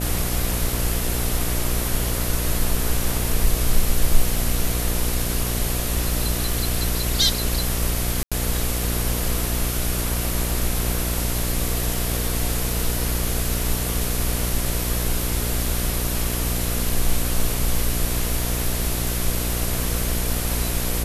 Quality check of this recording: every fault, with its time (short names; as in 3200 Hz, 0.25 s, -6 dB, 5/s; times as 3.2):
buzz 60 Hz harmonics 12 -26 dBFS
8.23–8.32 gap 86 ms